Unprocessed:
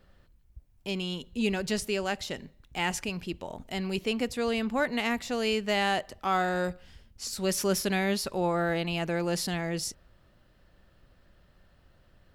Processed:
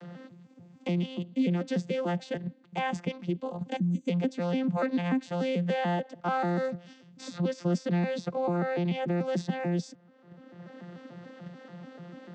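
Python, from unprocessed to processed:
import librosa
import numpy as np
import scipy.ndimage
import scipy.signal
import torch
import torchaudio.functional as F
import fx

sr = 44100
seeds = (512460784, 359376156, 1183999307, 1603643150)

p1 = fx.vocoder_arp(x, sr, chord='bare fifth', root=53, every_ms=146)
p2 = fx.spec_box(p1, sr, start_s=3.77, length_s=0.31, low_hz=330.0, high_hz=6000.0, gain_db=-20)
p3 = fx.level_steps(p2, sr, step_db=21)
p4 = p2 + (p3 * 10.0 ** (-2.0 / 20.0))
p5 = fx.air_absorb(p4, sr, metres=86.0, at=(7.33, 7.73))
y = fx.band_squash(p5, sr, depth_pct=70)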